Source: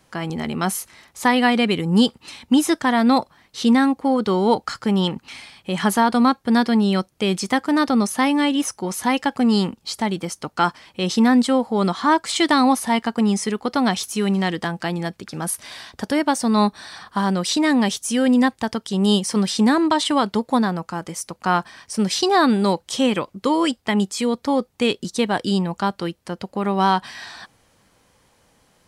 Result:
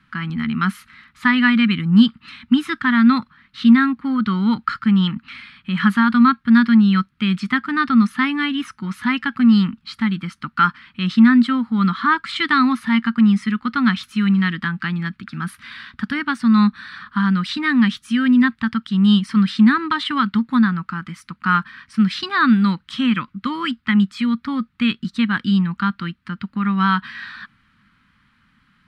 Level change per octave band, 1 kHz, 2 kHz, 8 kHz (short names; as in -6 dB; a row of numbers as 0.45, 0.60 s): -1.5 dB, +5.0 dB, under -15 dB